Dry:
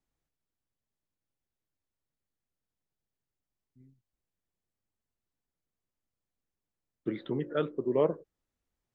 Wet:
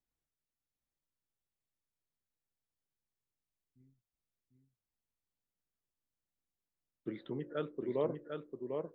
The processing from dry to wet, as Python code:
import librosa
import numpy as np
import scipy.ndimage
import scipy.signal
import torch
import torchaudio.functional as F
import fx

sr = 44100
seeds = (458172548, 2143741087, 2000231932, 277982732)

y = x + 10.0 ** (-5.0 / 20.0) * np.pad(x, (int(748 * sr / 1000.0), 0))[:len(x)]
y = y * 10.0 ** (-7.5 / 20.0)